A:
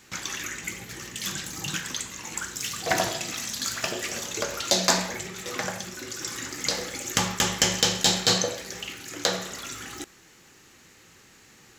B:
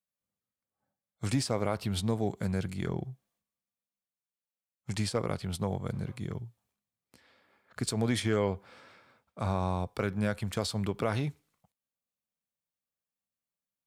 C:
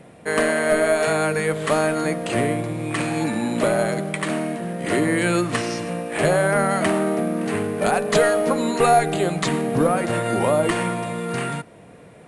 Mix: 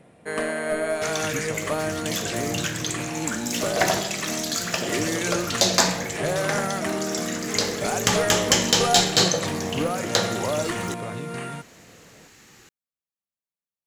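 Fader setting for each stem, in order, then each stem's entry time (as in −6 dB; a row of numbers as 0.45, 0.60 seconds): +2.5, −6.0, −7.0 decibels; 0.90, 0.00, 0.00 seconds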